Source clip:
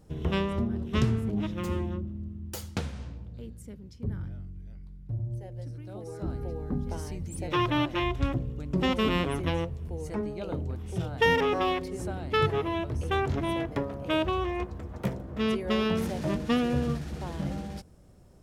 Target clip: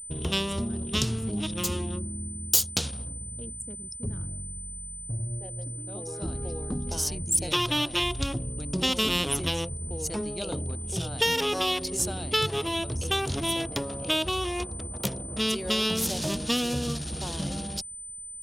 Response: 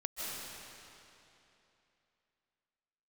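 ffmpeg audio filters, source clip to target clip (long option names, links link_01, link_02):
-filter_complex "[0:a]asplit=2[link_01][link_02];[1:a]atrim=start_sample=2205,atrim=end_sample=3528,lowshelf=frequency=240:gain=-8.5[link_03];[link_02][link_03]afir=irnorm=-1:irlink=0,volume=-8.5dB[link_04];[link_01][link_04]amix=inputs=2:normalize=0,anlmdn=0.1,aeval=exprs='val(0)+0.00126*sin(2*PI*9000*n/s)':channel_layout=same,acompressor=threshold=-28dB:ratio=2,aexciter=amount=5.1:drive=7.4:freq=2900"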